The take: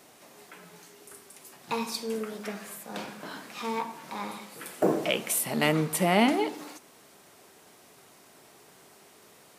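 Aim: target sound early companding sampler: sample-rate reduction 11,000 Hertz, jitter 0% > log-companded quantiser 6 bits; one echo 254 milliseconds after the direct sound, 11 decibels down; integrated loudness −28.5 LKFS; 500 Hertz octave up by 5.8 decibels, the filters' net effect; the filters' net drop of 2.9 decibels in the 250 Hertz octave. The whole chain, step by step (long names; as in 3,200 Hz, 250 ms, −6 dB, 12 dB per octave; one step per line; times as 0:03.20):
parametric band 250 Hz −7 dB
parametric band 500 Hz +9 dB
single-tap delay 254 ms −11 dB
sample-rate reduction 11,000 Hz, jitter 0%
log-companded quantiser 6 bits
level −2 dB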